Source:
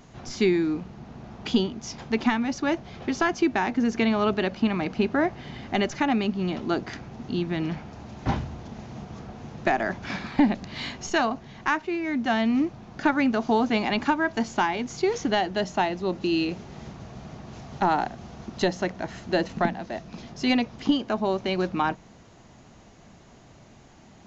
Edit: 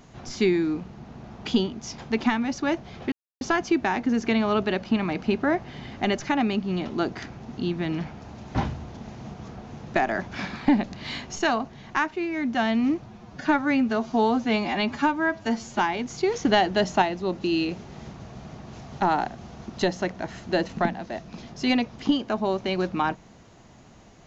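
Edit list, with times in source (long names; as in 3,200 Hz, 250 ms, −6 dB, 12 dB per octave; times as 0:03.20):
0:03.12: splice in silence 0.29 s
0:12.77–0:14.59: time-stretch 1.5×
0:15.25–0:15.82: clip gain +4 dB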